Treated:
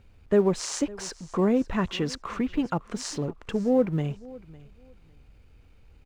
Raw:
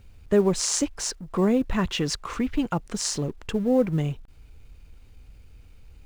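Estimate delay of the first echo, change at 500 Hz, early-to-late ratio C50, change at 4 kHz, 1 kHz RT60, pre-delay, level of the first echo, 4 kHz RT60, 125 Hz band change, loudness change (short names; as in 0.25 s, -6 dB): 0.555 s, -0.5 dB, none, -5.5 dB, none, none, -21.0 dB, none, -2.5 dB, -2.0 dB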